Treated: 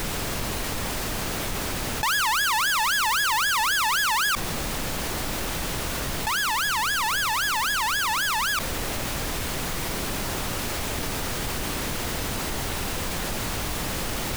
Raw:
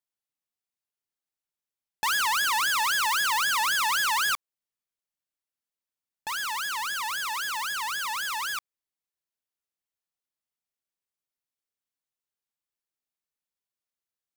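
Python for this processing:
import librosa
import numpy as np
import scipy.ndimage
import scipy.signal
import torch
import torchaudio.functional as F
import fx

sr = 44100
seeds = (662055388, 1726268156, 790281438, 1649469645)

y = fx.dmg_noise_colour(x, sr, seeds[0], colour='pink', level_db=-44.0)
y = fx.env_flatten(y, sr, amount_pct=70)
y = y * 10.0 ** (2.0 / 20.0)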